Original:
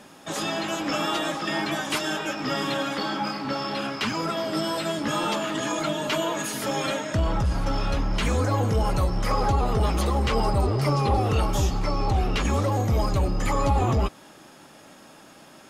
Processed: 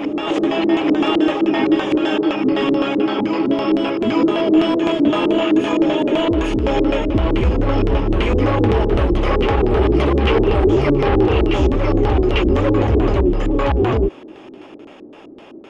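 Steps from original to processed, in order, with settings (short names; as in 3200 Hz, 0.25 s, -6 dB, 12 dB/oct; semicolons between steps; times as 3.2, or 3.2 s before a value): fifteen-band EQ 160 Hz -9 dB, 400 Hz +9 dB, 1600 Hz -7 dB, 4000 Hz -11 dB; overloaded stage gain 20.5 dB; LFO low-pass square 3.9 Hz 330–3000 Hz; on a send: reverse echo 0.847 s -5 dB; on the sum: gain +7 dB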